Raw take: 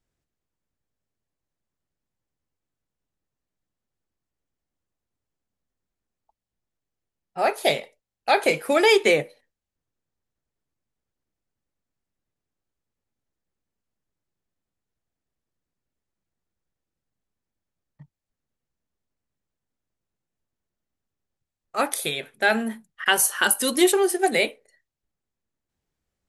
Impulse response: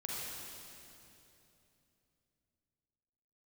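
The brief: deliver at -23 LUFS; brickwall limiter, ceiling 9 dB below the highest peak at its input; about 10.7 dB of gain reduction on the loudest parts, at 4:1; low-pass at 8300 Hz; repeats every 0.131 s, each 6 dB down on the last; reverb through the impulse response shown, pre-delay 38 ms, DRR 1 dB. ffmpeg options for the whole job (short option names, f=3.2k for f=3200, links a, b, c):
-filter_complex "[0:a]lowpass=8.3k,acompressor=threshold=-26dB:ratio=4,alimiter=limit=-19.5dB:level=0:latency=1,aecho=1:1:131|262|393|524|655|786:0.501|0.251|0.125|0.0626|0.0313|0.0157,asplit=2[a][b];[1:a]atrim=start_sample=2205,adelay=38[c];[b][c]afir=irnorm=-1:irlink=0,volume=-3dB[d];[a][d]amix=inputs=2:normalize=0,volume=5.5dB"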